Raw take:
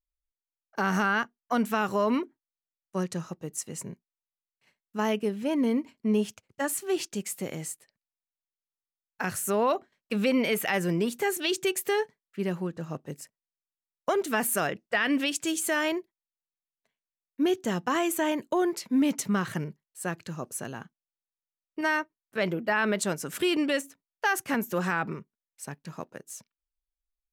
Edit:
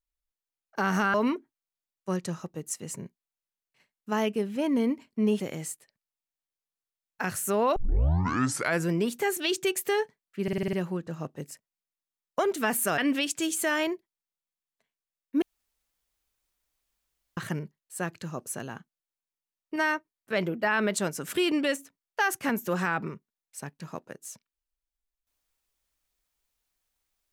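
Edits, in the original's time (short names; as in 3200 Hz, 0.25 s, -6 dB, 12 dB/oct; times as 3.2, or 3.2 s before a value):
1.14–2.01 cut
6.27–7.4 cut
9.76 tape start 1.14 s
12.43 stutter 0.05 s, 7 plays
14.68–15.03 cut
17.47–19.42 room tone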